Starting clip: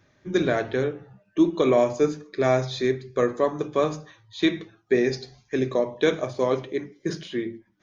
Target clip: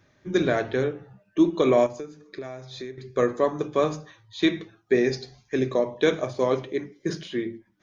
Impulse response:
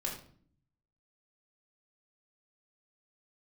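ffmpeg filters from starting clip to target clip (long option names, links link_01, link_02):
-filter_complex "[0:a]asettb=1/sr,asplit=3[link_01][link_02][link_03];[link_01]atrim=end=1.864[link_04];[link_02]atrim=start=1.86:end=2.98,asetpts=PTS-STARTPTS,afade=type=in:duration=0.004:curve=qsin,afade=type=out:start_time=1.116:duration=0.004:curve=qsin,acompressor=threshold=-33dB:ratio=20[link_05];[link_03]atrim=start=2.976[link_06];[link_04][link_05]acrossfade=duration=0.004:curve1=hsin:curve2=qsin[link_07];[link_07][link_06]acrossfade=duration=0.004:curve1=qsin:curve2=hsin"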